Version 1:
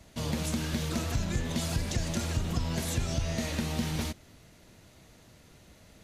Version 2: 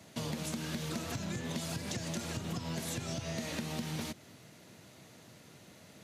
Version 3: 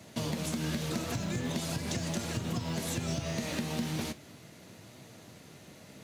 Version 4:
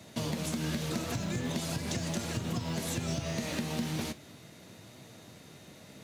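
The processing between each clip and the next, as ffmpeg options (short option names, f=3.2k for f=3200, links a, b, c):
-af "highpass=f=110:w=0.5412,highpass=f=110:w=1.3066,acompressor=threshold=-36dB:ratio=6,volume=1.5dB"
-filter_complex "[0:a]flanger=delay=7.9:depth=9.6:regen=73:speed=0.4:shape=triangular,asplit=2[a][b];[b]acrusher=samples=24:mix=1:aa=0.000001,volume=-12dB[c];[a][c]amix=inputs=2:normalize=0,volume=7dB"
-af "aeval=exprs='val(0)+0.000631*sin(2*PI*3700*n/s)':c=same"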